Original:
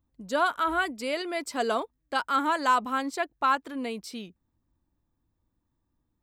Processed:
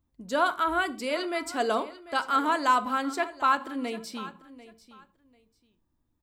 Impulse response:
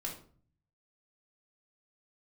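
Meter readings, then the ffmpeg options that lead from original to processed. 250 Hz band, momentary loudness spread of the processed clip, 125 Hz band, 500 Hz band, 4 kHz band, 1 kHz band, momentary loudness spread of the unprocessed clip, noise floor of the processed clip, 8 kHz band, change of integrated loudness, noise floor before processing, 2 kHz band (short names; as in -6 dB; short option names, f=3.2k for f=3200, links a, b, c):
+1.0 dB, 10 LU, n/a, +0.5 dB, 0.0 dB, +0.5 dB, 10 LU, -75 dBFS, 0.0 dB, +0.5 dB, -78 dBFS, 0.0 dB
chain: -filter_complex "[0:a]aecho=1:1:743|1486:0.141|0.0297,asplit=2[a][b];[1:a]atrim=start_sample=2205,afade=t=out:st=0.21:d=0.01,atrim=end_sample=9702[c];[b][c]afir=irnorm=-1:irlink=0,volume=-8dB[d];[a][d]amix=inputs=2:normalize=0,volume=-2dB"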